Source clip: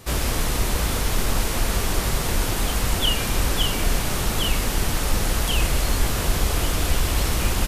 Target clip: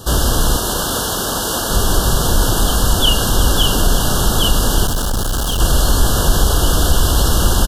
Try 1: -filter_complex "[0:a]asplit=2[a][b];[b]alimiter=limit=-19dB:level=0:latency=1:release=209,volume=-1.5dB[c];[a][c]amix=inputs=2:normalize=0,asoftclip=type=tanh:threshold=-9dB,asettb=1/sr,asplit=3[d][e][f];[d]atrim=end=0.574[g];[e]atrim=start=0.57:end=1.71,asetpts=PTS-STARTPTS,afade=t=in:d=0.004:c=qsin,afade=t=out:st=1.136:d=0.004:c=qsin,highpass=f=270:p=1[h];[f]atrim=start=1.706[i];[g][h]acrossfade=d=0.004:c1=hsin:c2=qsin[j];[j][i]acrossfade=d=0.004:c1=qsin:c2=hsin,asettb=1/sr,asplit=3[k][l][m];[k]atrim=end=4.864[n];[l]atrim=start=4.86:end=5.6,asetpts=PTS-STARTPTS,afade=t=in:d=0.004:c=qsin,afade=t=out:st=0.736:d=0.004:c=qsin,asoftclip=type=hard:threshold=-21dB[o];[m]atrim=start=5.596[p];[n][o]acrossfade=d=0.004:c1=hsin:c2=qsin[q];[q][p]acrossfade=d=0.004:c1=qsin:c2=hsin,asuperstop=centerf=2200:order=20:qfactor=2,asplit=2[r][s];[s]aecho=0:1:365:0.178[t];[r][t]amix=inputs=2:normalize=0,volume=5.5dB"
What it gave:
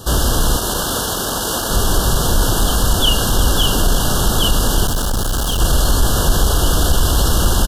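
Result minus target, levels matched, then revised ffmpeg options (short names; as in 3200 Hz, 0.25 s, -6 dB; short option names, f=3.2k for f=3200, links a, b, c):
soft clip: distortion +15 dB
-filter_complex "[0:a]asplit=2[a][b];[b]alimiter=limit=-19dB:level=0:latency=1:release=209,volume=-1.5dB[c];[a][c]amix=inputs=2:normalize=0,asoftclip=type=tanh:threshold=-0.5dB,asettb=1/sr,asplit=3[d][e][f];[d]atrim=end=0.574[g];[e]atrim=start=0.57:end=1.71,asetpts=PTS-STARTPTS,afade=t=in:d=0.004:c=qsin,afade=t=out:st=1.136:d=0.004:c=qsin,highpass=f=270:p=1[h];[f]atrim=start=1.706[i];[g][h]acrossfade=d=0.004:c1=hsin:c2=qsin[j];[j][i]acrossfade=d=0.004:c1=qsin:c2=hsin,asettb=1/sr,asplit=3[k][l][m];[k]atrim=end=4.864[n];[l]atrim=start=4.86:end=5.6,asetpts=PTS-STARTPTS,afade=t=in:d=0.004:c=qsin,afade=t=out:st=0.736:d=0.004:c=qsin,asoftclip=type=hard:threshold=-21dB[o];[m]atrim=start=5.596[p];[n][o]acrossfade=d=0.004:c1=hsin:c2=qsin[q];[q][p]acrossfade=d=0.004:c1=qsin:c2=hsin,asuperstop=centerf=2200:order=20:qfactor=2,asplit=2[r][s];[s]aecho=0:1:365:0.178[t];[r][t]amix=inputs=2:normalize=0,volume=5.5dB"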